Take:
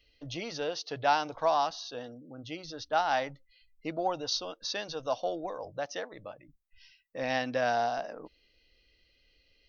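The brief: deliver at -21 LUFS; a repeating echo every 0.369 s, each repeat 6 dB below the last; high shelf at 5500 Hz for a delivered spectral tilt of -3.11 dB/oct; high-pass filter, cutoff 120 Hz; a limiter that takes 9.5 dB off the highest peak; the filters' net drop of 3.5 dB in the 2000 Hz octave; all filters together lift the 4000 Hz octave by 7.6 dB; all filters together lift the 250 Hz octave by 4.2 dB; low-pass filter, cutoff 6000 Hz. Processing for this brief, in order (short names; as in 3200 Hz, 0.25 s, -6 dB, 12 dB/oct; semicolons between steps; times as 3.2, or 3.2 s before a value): HPF 120 Hz; LPF 6000 Hz; bell 250 Hz +5.5 dB; bell 2000 Hz -8.5 dB; bell 4000 Hz +8.5 dB; high shelf 5500 Hz +8.5 dB; limiter -21 dBFS; feedback echo 0.369 s, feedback 50%, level -6 dB; gain +12 dB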